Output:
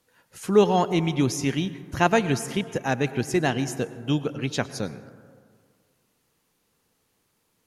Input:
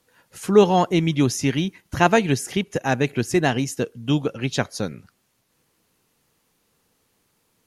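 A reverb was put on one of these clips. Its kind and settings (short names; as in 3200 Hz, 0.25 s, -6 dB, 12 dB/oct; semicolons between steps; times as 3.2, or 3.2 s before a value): plate-style reverb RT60 1.9 s, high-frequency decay 0.3×, pre-delay 90 ms, DRR 14 dB; gain -3.5 dB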